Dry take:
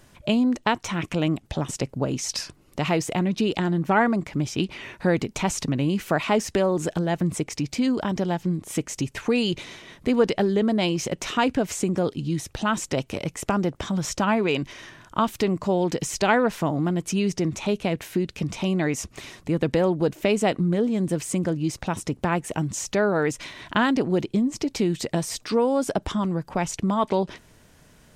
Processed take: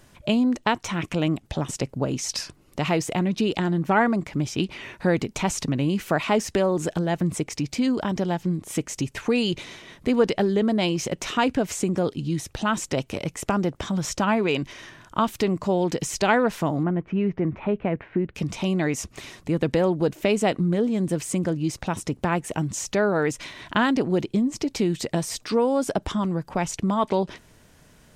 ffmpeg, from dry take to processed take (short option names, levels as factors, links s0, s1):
-filter_complex "[0:a]asettb=1/sr,asplit=3[s0][s1][s2];[s0]atrim=end=16.834[s3];[s1]atrim=start=16.83:end=18.35,asetpts=PTS-STARTPTS,afade=t=in:d=0.004:c=qsin,afade=t=out:st=1.516:d=0.004:c=qsin,lowpass=f=2100:w=0.5412,lowpass=f=2100:w=1.3066[s4];[s2]atrim=start=18.346[s5];[s3][s4]acrossfade=d=0.004:c1=hsin:c2=qsin[s6];[s6][s5]acrossfade=d=0.004:c1=qsin:c2=hsin"